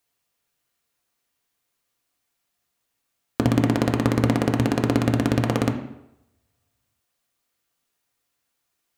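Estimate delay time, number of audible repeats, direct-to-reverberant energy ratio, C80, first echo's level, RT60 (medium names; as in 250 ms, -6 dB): no echo, no echo, 2.0 dB, 11.5 dB, no echo, 0.85 s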